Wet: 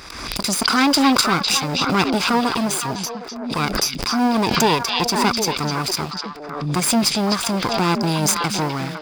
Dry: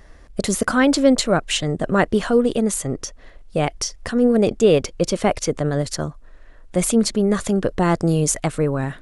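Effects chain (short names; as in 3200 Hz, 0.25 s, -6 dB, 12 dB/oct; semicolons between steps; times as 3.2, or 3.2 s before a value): minimum comb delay 0.82 ms; in parallel at -6 dB: bit-crush 6-bit; on the sum: HPF 340 Hz 6 dB/oct; bell 4900 Hz +12 dB 0.31 oct; on a send: delay with a stepping band-pass 0.253 s, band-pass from 3500 Hz, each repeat -1.4 oct, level -2 dB; on the sum: backwards sustainer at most 45 dB/s; gain -1.5 dB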